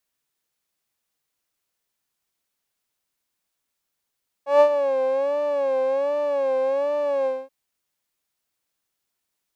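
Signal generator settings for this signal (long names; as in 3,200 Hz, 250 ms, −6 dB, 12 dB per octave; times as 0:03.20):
subtractive patch with vibrato C#5, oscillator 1 saw, oscillator 2 square, interval +7 semitones, oscillator 2 level −14 dB, sub −19 dB, noise −29 dB, filter bandpass, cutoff 360 Hz, Q 2.2, filter envelope 1 octave, filter decay 0.47 s, filter sustain 45%, attack 145 ms, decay 0.08 s, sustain −10 dB, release 0.23 s, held 2.80 s, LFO 1.3 Hz, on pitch 100 cents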